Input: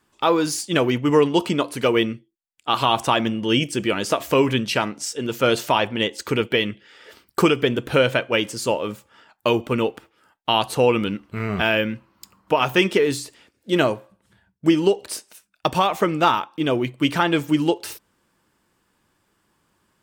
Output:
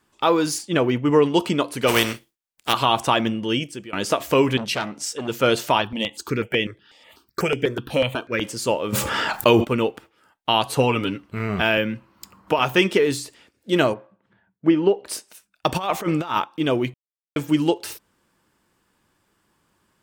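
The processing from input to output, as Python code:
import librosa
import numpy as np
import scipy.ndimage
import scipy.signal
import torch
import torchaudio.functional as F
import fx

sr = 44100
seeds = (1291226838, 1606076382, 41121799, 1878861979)

y = fx.high_shelf(x, sr, hz=3300.0, db=-8.5, at=(0.58, 1.24))
y = fx.spec_flatten(y, sr, power=0.45, at=(1.87, 2.72), fade=0.02)
y = fx.transformer_sat(y, sr, knee_hz=2200.0, at=(4.57, 5.28))
y = fx.phaser_held(y, sr, hz=8.1, low_hz=390.0, high_hz=4200.0, at=(5.81, 8.4), fade=0.02)
y = fx.env_flatten(y, sr, amount_pct=70, at=(8.92, 9.63), fade=0.02)
y = fx.comb(y, sr, ms=7.2, depth=0.58, at=(10.65, 11.23))
y = fx.band_squash(y, sr, depth_pct=40, at=(11.77, 12.59))
y = fx.bandpass_edges(y, sr, low_hz=150.0, high_hz=2100.0, at=(13.93, 15.05), fade=0.02)
y = fx.over_compress(y, sr, threshold_db=-22.0, ratio=-0.5, at=(15.69, 16.44))
y = fx.edit(y, sr, fx.fade_out_to(start_s=3.31, length_s=0.62, floor_db=-21.5),
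    fx.silence(start_s=16.94, length_s=0.42), tone=tone)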